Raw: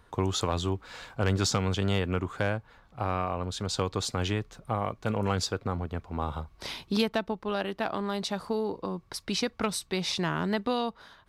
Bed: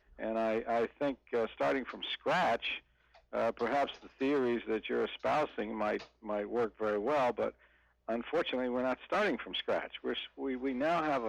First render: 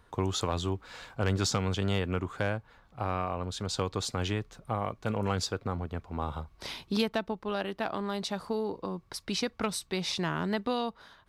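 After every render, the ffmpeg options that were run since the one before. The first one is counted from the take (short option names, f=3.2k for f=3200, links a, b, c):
-af "volume=-2dB"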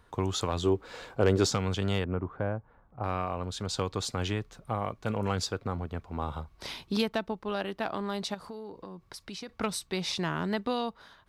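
-filter_complex "[0:a]asettb=1/sr,asplit=3[a][b][c];[a]atrim=end=0.634[d];[b]atrim=start=0.63:end=1.5,asetpts=PTS-STARTPTS,afade=t=in:d=0.004:c=qsin,afade=t=out:st=0.866:d=0.004:c=qsin,equalizer=f=420:w=1.2:g=10.5[e];[c]atrim=start=1.496[f];[d][e]acrossfade=d=0.004:c1=hsin:c2=qsin[g];[g][f]acrossfade=d=0.004:c1=qsin:c2=hsin,asettb=1/sr,asplit=3[h][i][j];[h]atrim=end=2.044[k];[i]atrim=start=2.04:end=3.04,asetpts=PTS-STARTPTS,afade=t=in:d=0.004:c=qsin,afade=t=out:st=0.996:d=0.004:c=qsin,lowpass=1.1k[l];[j]atrim=start=3.036[m];[k][l]acrossfade=d=0.004:c1=hsin:c2=qsin[n];[n][m]acrossfade=d=0.004:c1=qsin:c2=hsin,asettb=1/sr,asplit=3[o][p][q];[o]atrim=end=8.344[r];[p]atrim=start=8.34:end=9.49,asetpts=PTS-STARTPTS,afade=t=in:d=0.004:c=qsin,afade=t=out:st=1.146:d=0.004:c=qsin,acompressor=threshold=-42dB:ratio=2.5:attack=3.2:release=140:knee=1:detection=peak[s];[q]atrim=start=9.486[t];[r][s]acrossfade=d=0.004:c1=hsin:c2=qsin[u];[u][t]acrossfade=d=0.004:c1=qsin:c2=hsin"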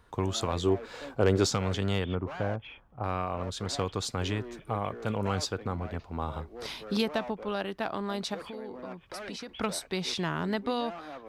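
-filter_complex "[1:a]volume=-11dB[a];[0:a][a]amix=inputs=2:normalize=0"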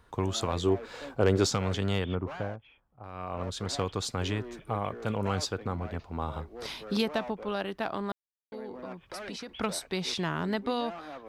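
-filter_complex "[0:a]asplit=5[a][b][c][d][e];[a]atrim=end=2.62,asetpts=PTS-STARTPTS,afade=t=out:st=2.32:d=0.3:silence=0.237137[f];[b]atrim=start=2.62:end=3.12,asetpts=PTS-STARTPTS,volume=-12.5dB[g];[c]atrim=start=3.12:end=8.12,asetpts=PTS-STARTPTS,afade=t=in:d=0.3:silence=0.237137,afade=t=out:st=4.996:d=0.004:c=hsin[h];[d]atrim=start=8.12:end=8.52,asetpts=PTS-STARTPTS,volume=0[i];[e]atrim=start=8.52,asetpts=PTS-STARTPTS,afade=t=in:d=0.004:c=hsin[j];[f][g][h][i][j]concat=n=5:v=0:a=1"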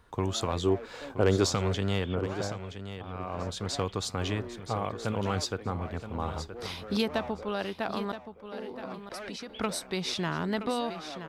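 -af "aecho=1:1:973|1946:0.282|0.0479"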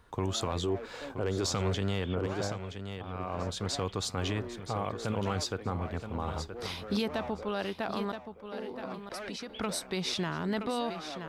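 -af "alimiter=limit=-22dB:level=0:latency=1:release=22,areverse,acompressor=mode=upward:threshold=-41dB:ratio=2.5,areverse"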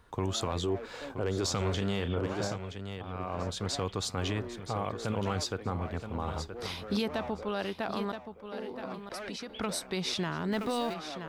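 -filter_complex "[0:a]asettb=1/sr,asplit=3[a][b][c];[a]atrim=end=1.584[d];[b]atrim=start=1.58:end=2.56,asetpts=PTS-STARTPTS,afade=t=in:d=0.004:c=qsin,afade=t=out:st=0.976:d=0.004:c=qsin,asplit=2[e][f];[f]adelay=35,volume=-8.5dB[g];[e][g]amix=inputs=2:normalize=0,atrim=end_sample=43218[h];[c]atrim=start=2.556[i];[d][h]acrossfade=d=0.004:c1=hsin:c2=qsin[j];[j][i]acrossfade=d=0.004:c1=qsin:c2=hsin,asettb=1/sr,asplit=3[k][l][m];[k]atrim=end=10.524[n];[l]atrim=start=10.52:end=10.94,asetpts=PTS-STARTPTS,afade=t=in:d=0.004:c=qsin,afade=t=out:st=0.416:d=0.004:c=qsin,aeval=exprs='val(0)+0.5*0.00708*sgn(val(0))':c=same[o];[m]atrim=start=10.936[p];[n][o]acrossfade=d=0.004:c1=hsin:c2=qsin[q];[q][p]acrossfade=d=0.004:c1=qsin:c2=hsin"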